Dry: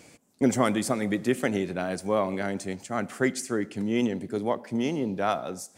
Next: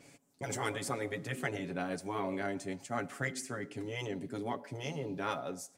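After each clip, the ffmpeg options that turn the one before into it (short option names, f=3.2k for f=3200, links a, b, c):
-af "afftfilt=real='re*lt(hypot(re,im),0.282)':imag='im*lt(hypot(re,im),0.282)':win_size=1024:overlap=0.75,aecho=1:1:7.2:0.56,adynamicequalizer=threshold=0.00708:dfrequency=3200:dqfactor=0.7:tfrequency=3200:tqfactor=0.7:attack=5:release=100:ratio=0.375:range=2:mode=cutabove:tftype=highshelf,volume=-6.5dB"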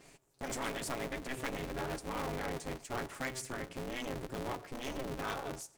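-filter_complex "[0:a]asplit=2[a][b];[b]aeval=exprs='0.0224*(abs(mod(val(0)/0.0224+3,4)-2)-1)':c=same,volume=-5dB[c];[a][c]amix=inputs=2:normalize=0,aeval=exprs='val(0)*sgn(sin(2*PI*130*n/s))':c=same,volume=-4.5dB"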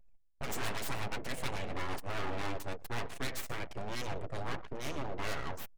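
-af "aeval=exprs='abs(val(0))':c=same,aecho=1:1:120:0.168,anlmdn=0.00251,volume=4.5dB"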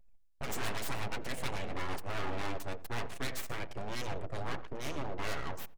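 -filter_complex "[0:a]asplit=2[a][b];[b]adelay=85,lowpass=f=990:p=1,volume=-15.5dB,asplit=2[c][d];[d]adelay=85,lowpass=f=990:p=1,volume=0.26,asplit=2[e][f];[f]adelay=85,lowpass=f=990:p=1,volume=0.26[g];[a][c][e][g]amix=inputs=4:normalize=0"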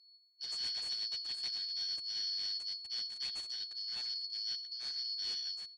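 -af "afftfilt=real='real(if(lt(b,272),68*(eq(floor(b/68),0)*3+eq(floor(b/68),1)*2+eq(floor(b/68),2)*1+eq(floor(b/68),3)*0)+mod(b,68),b),0)':imag='imag(if(lt(b,272),68*(eq(floor(b/68),0)*3+eq(floor(b/68),1)*2+eq(floor(b/68),2)*1+eq(floor(b/68),3)*0)+mod(b,68),b),0)':win_size=2048:overlap=0.75,aresample=22050,aresample=44100,volume=-8.5dB"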